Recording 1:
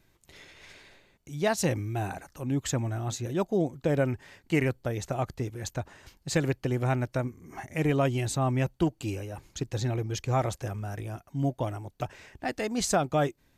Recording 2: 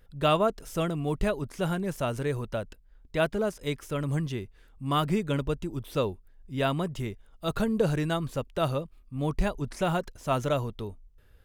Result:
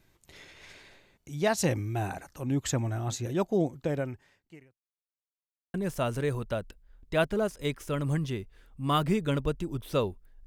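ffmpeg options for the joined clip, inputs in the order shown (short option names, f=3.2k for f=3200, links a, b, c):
-filter_complex "[0:a]apad=whole_dur=10.46,atrim=end=10.46,asplit=2[a][b];[a]atrim=end=4.83,asetpts=PTS-STARTPTS,afade=t=out:st=3.66:d=1.17:c=qua[c];[b]atrim=start=4.83:end=5.74,asetpts=PTS-STARTPTS,volume=0[d];[1:a]atrim=start=1.76:end=6.48,asetpts=PTS-STARTPTS,afade=t=in:d=0.004:c=hsin[e];[c][d][e]concat=n=3:v=0:a=1"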